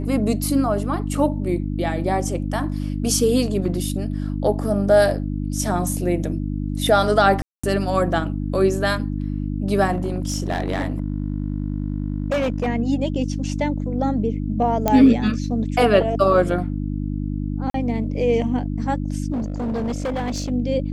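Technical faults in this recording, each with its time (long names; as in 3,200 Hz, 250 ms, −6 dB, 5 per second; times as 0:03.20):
mains hum 50 Hz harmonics 6 −25 dBFS
0:07.42–0:07.63: drop-out 215 ms
0:09.91–0:12.68: clipping −17.5 dBFS
0:14.88: click −5 dBFS
0:17.70–0:17.74: drop-out 43 ms
0:19.32–0:20.51: clipping −21 dBFS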